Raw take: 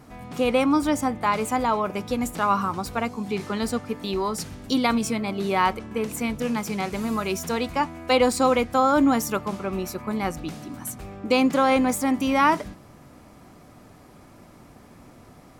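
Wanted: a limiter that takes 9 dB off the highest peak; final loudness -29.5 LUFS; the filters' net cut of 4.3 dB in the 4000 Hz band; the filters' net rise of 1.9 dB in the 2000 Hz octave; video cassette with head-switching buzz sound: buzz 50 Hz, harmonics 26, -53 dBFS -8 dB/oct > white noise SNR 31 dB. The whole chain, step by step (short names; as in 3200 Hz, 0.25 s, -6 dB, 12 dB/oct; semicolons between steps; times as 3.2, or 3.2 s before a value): bell 2000 Hz +4.5 dB; bell 4000 Hz -8 dB; limiter -17 dBFS; buzz 50 Hz, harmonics 26, -53 dBFS -8 dB/oct; white noise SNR 31 dB; gain -1.5 dB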